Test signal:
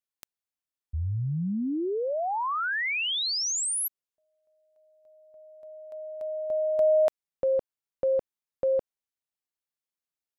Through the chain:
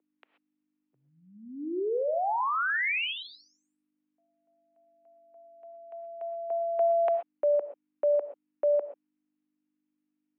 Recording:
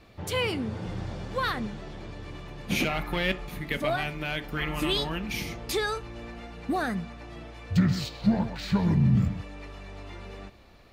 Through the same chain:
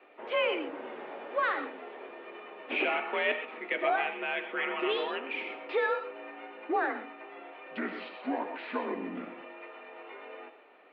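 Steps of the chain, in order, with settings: gated-style reverb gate 150 ms rising, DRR 9 dB; hum 50 Hz, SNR 29 dB; mistuned SSB +53 Hz 300–2800 Hz

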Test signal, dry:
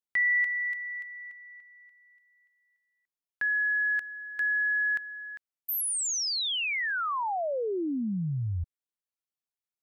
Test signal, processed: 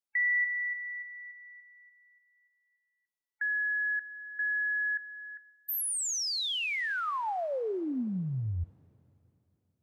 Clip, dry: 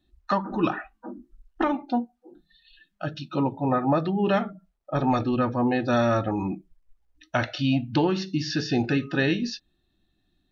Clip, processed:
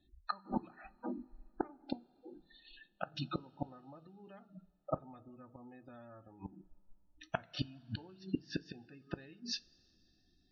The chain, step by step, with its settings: inverted gate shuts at -19 dBFS, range -30 dB; spectral gate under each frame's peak -25 dB strong; two-slope reverb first 0.22 s, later 3.3 s, from -21 dB, DRR 15.5 dB; trim -2.5 dB

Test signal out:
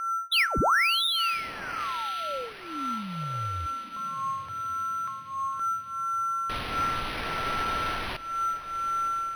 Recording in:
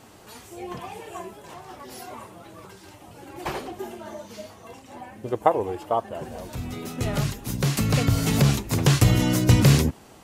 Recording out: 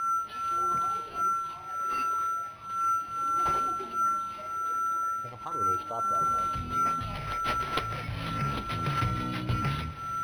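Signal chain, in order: whistle 6 kHz -28 dBFS; tone controls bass +4 dB, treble -6 dB; in parallel at -0.5 dB: compressor with a negative ratio -25 dBFS, ratio -0.5; on the sum: pre-emphasis filter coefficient 0.9; phase shifter stages 6, 0.36 Hz, lowest notch 190–2800 Hz; on a send: echo that smears into a reverb 1038 ms, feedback 50%, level -14.5 dB; on the sum: FDN reverb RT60 0.51 s, high-frequency decay 0.65×, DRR 18.5 dB; decimation joined by straight lines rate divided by 6×; trim +1.5 dB

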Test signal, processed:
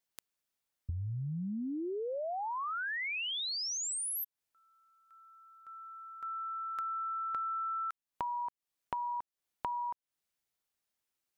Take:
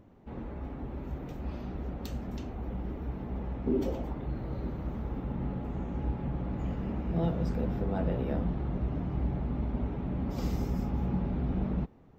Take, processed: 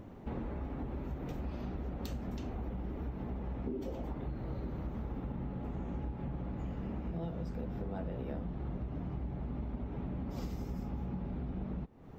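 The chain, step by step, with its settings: compression 10:1, threshold -43 dBFS; trim +7.5 dB

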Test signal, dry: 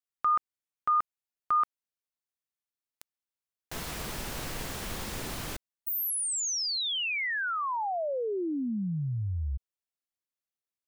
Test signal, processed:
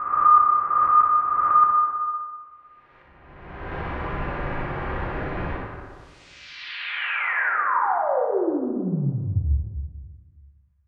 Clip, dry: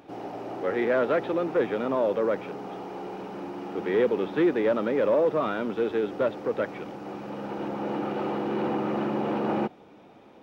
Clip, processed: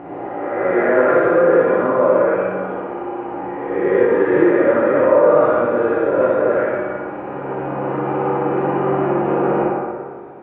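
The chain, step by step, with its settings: reverse spectral sustain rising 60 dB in 1.56 s; low-pass 2.1 kHz 24 dB/octave; comb of notches 220 Hz; thinning echo 60 ms, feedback 66%, high-pass 350 Hz, level -5 dB; plate-style reverb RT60 1.8 s, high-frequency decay 0.4×, pre-delay 0 ms, DRR -1 dB; trim +3.5 dB

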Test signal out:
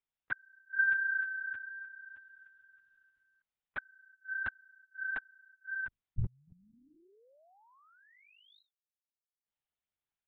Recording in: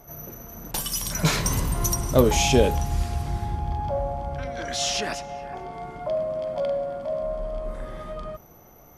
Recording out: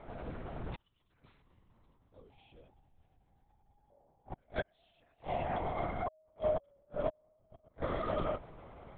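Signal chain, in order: hum notches 50/100/150 Hz; inverted gate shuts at -22 dBFS, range -41 dB; LPC vocoder at 8 kHz whisper

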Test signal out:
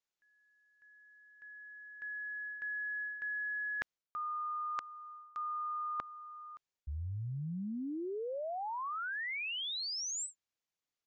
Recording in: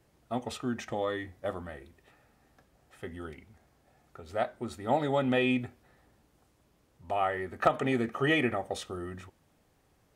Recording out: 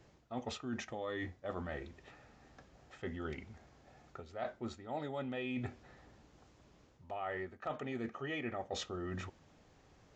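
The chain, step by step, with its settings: resampled via 16 kHz; reverse; compression 12:1, threshold -41 dBFS; reverse; trim +4 dB

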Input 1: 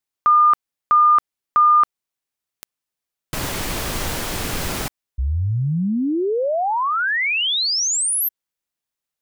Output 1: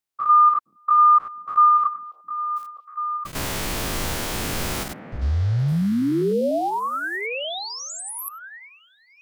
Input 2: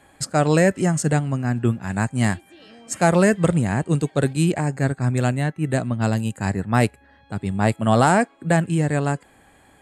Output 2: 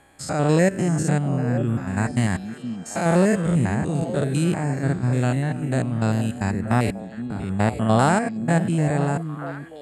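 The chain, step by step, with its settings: spectrogram pixelated in time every 100 ms; repeats whose band climbs or falls 466 ms, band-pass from 220 Hz, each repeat 1.4 oct, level -6 dB

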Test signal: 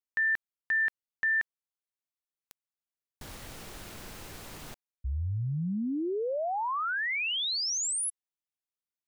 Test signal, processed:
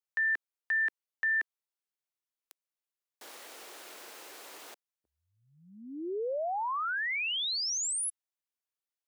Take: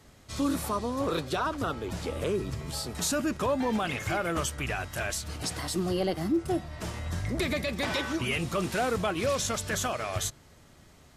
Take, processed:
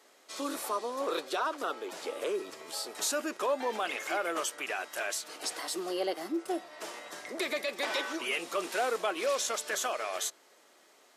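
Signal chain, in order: high-pass 360 Hz 24 dB/octave; trim -1.5 dB

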